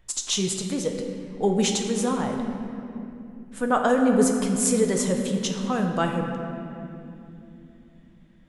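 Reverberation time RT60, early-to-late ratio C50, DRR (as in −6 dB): 2.9 s, 4.0 dB, 2.5 dB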